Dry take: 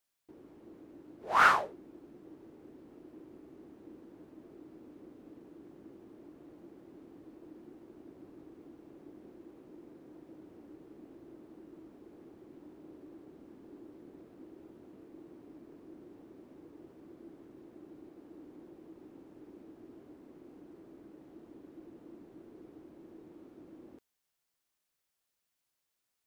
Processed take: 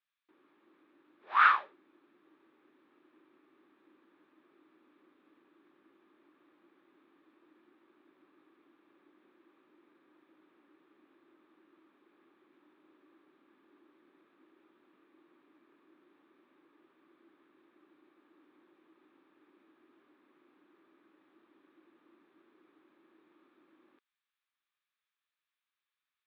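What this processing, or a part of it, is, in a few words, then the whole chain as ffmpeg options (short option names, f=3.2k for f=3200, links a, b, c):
phone earpiece: -af "highpass=420,equalizer=f=470:t=q:w=4:g=-9,equalizer=f=680:t=q:w=4:g=-9,equalizer=f=1.2k:t=q:w=4:g=9,equalizer=f=1.7k:t=q:w=4:g=7,equalizer=f=2.4k:t=q:w=4:g=7,equalizer=f=3.6k:t=q:w=4:g=8,lowpass=f=3.9k:w=0.5412,lowpass=f=3.9k:w=1.3066,volume=-7dB"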